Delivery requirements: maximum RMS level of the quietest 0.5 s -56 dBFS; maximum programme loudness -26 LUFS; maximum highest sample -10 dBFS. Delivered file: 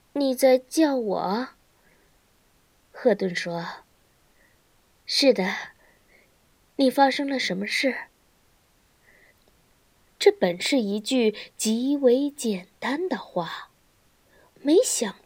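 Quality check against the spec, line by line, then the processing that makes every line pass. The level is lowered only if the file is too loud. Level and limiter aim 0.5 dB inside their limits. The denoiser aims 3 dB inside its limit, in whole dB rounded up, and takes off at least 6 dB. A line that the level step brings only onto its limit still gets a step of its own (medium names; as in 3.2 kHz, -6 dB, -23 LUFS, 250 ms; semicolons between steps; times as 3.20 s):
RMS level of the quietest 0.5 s -63 dBFS: pass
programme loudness -23.5 LUFS: fail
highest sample -4.5 dBFS: fail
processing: trim -3 dB; peak limiter -10.5 dBFS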